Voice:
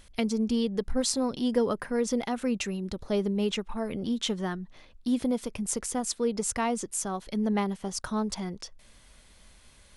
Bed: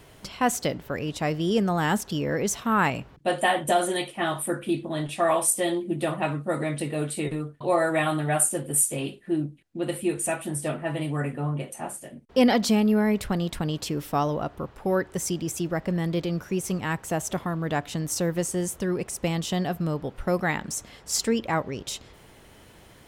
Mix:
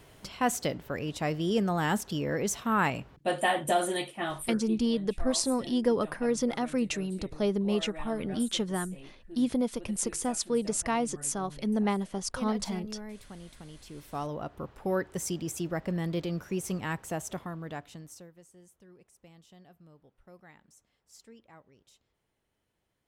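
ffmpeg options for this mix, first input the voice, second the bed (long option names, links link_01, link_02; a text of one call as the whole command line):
ffmpeg -i stem1.wav -i stem2.wav -filter_complex "[0:a]adelay=4300,volume=-0.5dB[link_01];[1:a]volume=11dB,afade=type=out:start_time=3.97:duration=0.92:silence=0.158489,afade=type=in:start_time=13.84:duration=0.87:silence=0.177828,afade=type=out:start_time=16.85:duration=1.46:silence=0.0630957[link_02];[link_01][link_02]amix=inputs=2:normalize=0" out.wav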